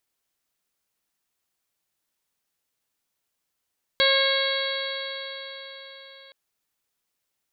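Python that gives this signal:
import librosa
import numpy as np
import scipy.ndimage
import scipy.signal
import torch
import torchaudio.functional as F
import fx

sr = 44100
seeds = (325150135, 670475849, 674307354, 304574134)

y = fx.additive_stiff(sr, length_s=2.32, hz=541.0, level_db=-22, upper_db=(-7.5, -2.5, -2.5, -14, -1.5, 0.0, -4.5), decay_s=4.54, stiffness=0.00099)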